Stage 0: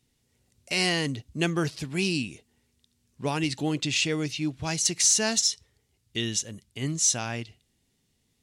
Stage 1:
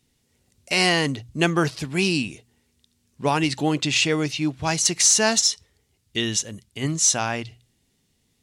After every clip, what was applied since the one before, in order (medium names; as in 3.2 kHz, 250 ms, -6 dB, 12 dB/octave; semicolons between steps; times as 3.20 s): hum notches 60/120 Hz; dynamic bell 980 Hz, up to +6 dB, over -43 dBFS, Q 0.74; trim +4 dB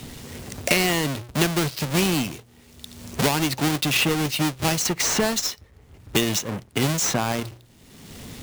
square wave that keeps the level; three bands compressed up and down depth 100%; trim -5 dB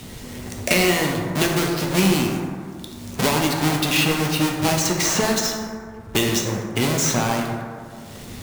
plate-style reverb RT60 2.1 s, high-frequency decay 0.35×, DRR 0 dB